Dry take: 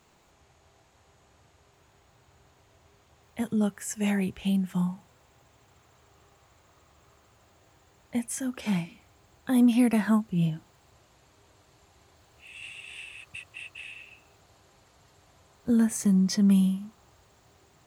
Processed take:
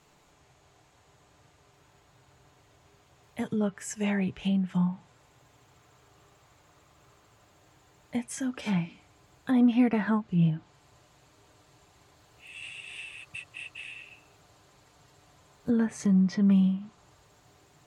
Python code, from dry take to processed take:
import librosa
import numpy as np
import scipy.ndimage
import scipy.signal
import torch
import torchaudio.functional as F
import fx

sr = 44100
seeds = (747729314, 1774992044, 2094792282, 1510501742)

y = x + 0.38 * np.pad(x, (int(6.8 * sr / 1000.0), 0))[:len(x)]
y = fx.env_lowpass_down(y, sr, base_hz=2700.0, full_db=-23.0)